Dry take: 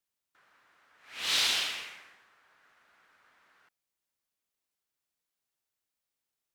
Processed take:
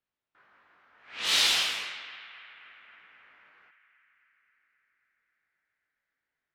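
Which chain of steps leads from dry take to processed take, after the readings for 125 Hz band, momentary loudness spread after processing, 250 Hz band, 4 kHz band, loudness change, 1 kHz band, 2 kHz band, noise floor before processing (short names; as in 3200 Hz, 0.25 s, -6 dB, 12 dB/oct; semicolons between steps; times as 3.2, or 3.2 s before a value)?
n/a, 21 LU, +3.0 dB, +3.5 dB, +3.0 dB, +4.0 dB, +4.0 dB, under -85 dBFS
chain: chorus 0.67 Hz, delay 18 ms, depth 2.7 ms; narrowing echo 0.266 s, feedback 77%, band-pass 1700 Hz, level -13.5 dB; low-pass opened by the level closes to 2600 Hz, open at -34 dBFS; gain +6.5 dB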